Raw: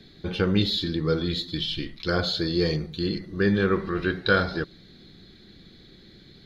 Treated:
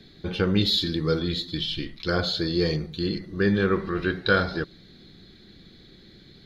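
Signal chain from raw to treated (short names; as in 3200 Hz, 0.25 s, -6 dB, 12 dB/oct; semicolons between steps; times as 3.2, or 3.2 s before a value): 0.65–1.18 high shelf 3800 Hz -> 5200 Hz +8 dB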